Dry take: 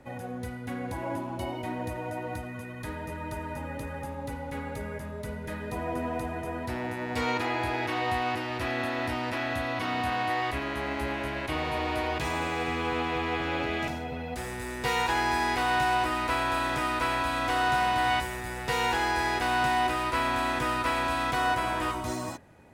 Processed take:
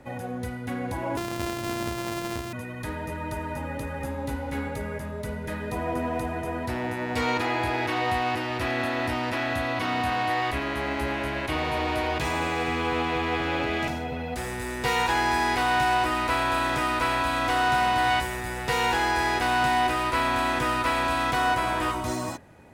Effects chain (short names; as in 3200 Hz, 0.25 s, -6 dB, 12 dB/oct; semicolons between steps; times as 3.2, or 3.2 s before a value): 1.17–2.53 sample sorter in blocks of 128 samples; in parallel at -5.5 dB: one-sided clip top -30.5 dBFS; 3.99–4.68 on the sum: doubler 15 ms -3.5 dB